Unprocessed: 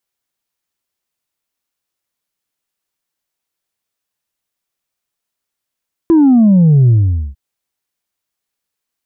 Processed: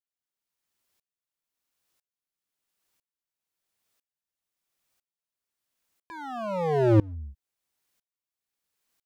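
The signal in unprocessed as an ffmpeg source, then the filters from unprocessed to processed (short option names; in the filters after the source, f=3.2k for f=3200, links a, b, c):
-f lavfi -i "aevalsrc='0.531*clip((1.25-t)/0.46,0,1)*tanh(1.19*sin(2*PI*340*1.25/log(65/340)*(exp(log(65/340)*t/1.25)-1)))/tanh(1.19)':d=1.25:s=44100"
-filter_complex "[0:a]asplit=2[a][b];[b]acompressor=threshold=-19dB:ratio=10,volume=-1.5dB[c];[a][c]amix=inputs=2:normalize=0,aeval=exprs='0.316*(abs(mod(val(0)/0.316+3,4)-2)-1)':c=same,aeval=exprs='val(0)*pow(10,-27*if(lt(mod(-1*n/s,1),2*abs(-1)/1000),1-mod(-1*n/s,1)/(2*abs(-1)/1000),(mod(-1*n/s,1)-2*abs(-1)/1000)/(1-2*abs(-1)/1000))/20)':c=same"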